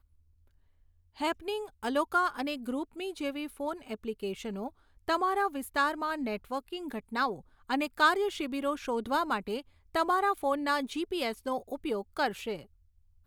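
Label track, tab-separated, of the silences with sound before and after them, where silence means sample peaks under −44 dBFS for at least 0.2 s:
4.690000	5.080000	silence
7.410000	7.700000	silence
9.610000	9.950000	silence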